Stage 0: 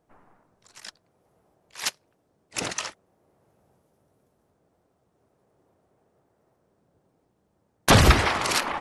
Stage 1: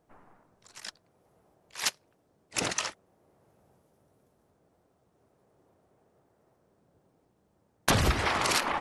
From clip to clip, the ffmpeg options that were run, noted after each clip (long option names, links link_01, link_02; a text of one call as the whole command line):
ffmpeg -i in.wav -af "acompressor=threshold=-22dB:ratio=6" out.wav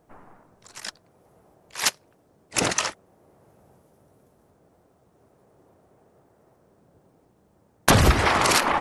ffmpeg -i in.wav -af "equalizer=frequency=3600:width_type=o:width=1.9:gain=-3,volume=8.5dB" out.wav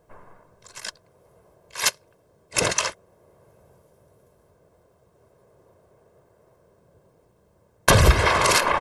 ffmpeg -i in.wav -af "aecho=1:1:1.9:0.54" out.wav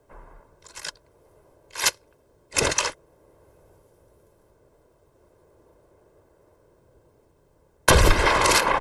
ffmpeg -i in.wav -af "afreqshift=-40" out.wav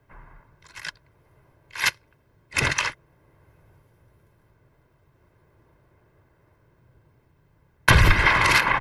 ffmpeg -i in.wav -af "equalizer=frequency=125:width_type=o:width=1:gain=8,equalizer=frequency=500:width_type=o:width=1:gain=-9,equalizer=frequency=2000:width_type=o:width=1:gain=8,equalizer=frequency=8000:width_type=o:width=1:gain=-10,volume=-1dB" out.wav